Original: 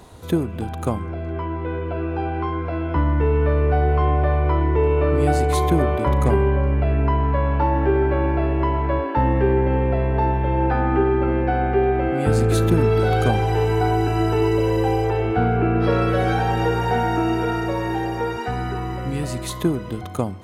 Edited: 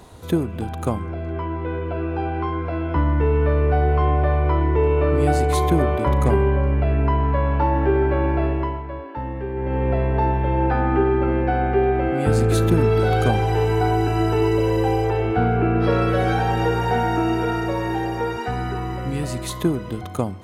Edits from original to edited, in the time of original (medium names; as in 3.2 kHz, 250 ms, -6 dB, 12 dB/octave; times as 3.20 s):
8.46–9.91 s: dip -10.5 dB, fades 0.38 s